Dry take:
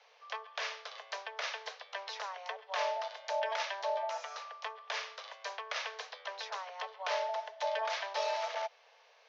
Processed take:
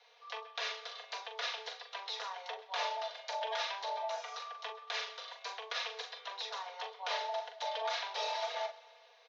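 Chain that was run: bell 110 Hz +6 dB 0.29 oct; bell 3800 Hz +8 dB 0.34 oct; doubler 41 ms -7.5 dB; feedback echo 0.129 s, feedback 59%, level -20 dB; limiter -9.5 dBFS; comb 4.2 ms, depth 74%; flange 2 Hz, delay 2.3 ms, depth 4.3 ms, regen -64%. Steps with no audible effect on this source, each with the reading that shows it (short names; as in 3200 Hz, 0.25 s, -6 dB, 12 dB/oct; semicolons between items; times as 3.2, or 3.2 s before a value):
bell 110 Hz: input band starts at 380 Hz; limiter -9.5 dBFS: input peak -18.0 dBFS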